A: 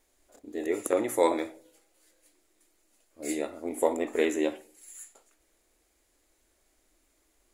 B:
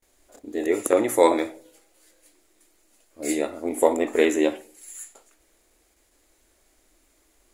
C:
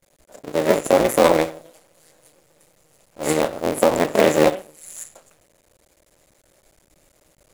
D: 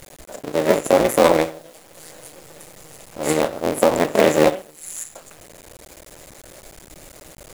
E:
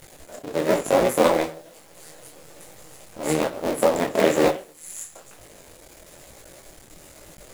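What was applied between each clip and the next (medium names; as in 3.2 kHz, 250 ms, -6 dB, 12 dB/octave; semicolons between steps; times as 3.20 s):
gate with hold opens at -60 dBFS; trim +6.5 dB
cycle switcher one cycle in 2, muted; peaking EQ 570 Hz +8.5 dB 0.39 oct; loudness maximiser +7 dB; trim -1 dB
in parallel at +2 dB: upward compressor, threshold -21 dBFS; on the sum: bit crusher 7-bit; trim -6.5 dB
detune thickener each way 38 cents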